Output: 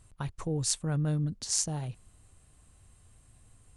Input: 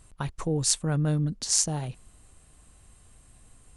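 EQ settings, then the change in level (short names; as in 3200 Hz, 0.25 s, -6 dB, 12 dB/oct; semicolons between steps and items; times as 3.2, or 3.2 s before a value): bell 100 Hz +7.5 dB 0.72 oct; -5.5 dB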